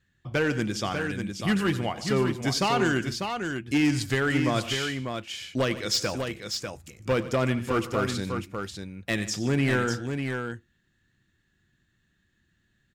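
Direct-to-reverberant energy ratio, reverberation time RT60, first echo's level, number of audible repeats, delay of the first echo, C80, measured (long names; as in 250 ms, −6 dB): no reverb audible, no reverb audible, −15.5 dB, 3, 93 ms, no reverb audible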